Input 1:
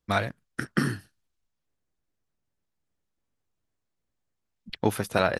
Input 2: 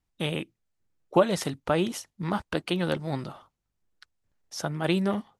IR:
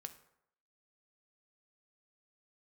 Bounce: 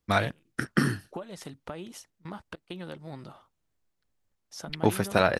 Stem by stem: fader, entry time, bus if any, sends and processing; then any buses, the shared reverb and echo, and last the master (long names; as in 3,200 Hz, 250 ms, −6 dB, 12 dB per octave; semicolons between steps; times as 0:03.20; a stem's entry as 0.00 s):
+1.0 dB, 0.00 s, no send, no processing
−5.5 dB, 0.00 s, no send, downward compressor 5 to 1, threshold −31 dBFS, peak gain reduction 15.5 dB; gate pattern "xx.xx.xxxxxx" 100 BPM −24 dB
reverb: not used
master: no processing